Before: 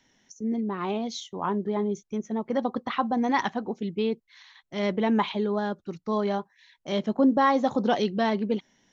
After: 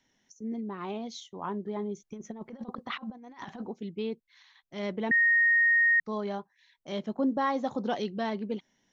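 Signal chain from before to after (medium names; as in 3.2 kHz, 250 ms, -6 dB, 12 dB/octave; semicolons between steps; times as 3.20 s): 2.00–3.67 s: compressor with a negative ratio -32 dBFS, ratio -0.5; 5.11–6.00 s: bleep 1.86 kHz -12.5 dBFS; trim -7 dB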